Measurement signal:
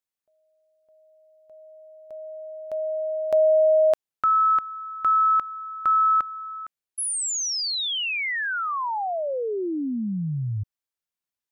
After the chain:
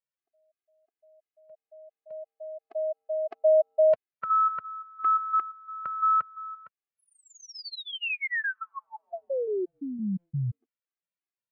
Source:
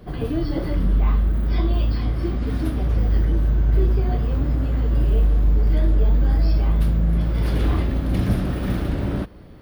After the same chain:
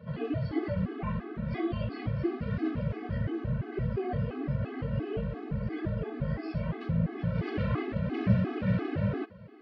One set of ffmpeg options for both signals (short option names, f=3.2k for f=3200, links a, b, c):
-af "highpass=f=100:w=0.5412,highpass=f=100:w=1.3066,equalizer=f=270:t=q:w=4:g=-6,equalizer=f=870:t=q:w=4:g=-6,equalizer=f=3.5k:t=q:w=4:g=-9,lowpass=f=3.7k:w=0.5412,lowpass=f=3.7k:w=1.3066,afftfilt=real='re*gt(sin(2*PI*2.9*pts/sr)*(1-2*mod(floor(b*sr/1024/220),2)),0)':imag='im*gt(sin(2*PI*2.9*pts/sr)*(1-2*mod(floor(b*sr/1024/220),2)),0)':win_size=1024:overlap=0.75"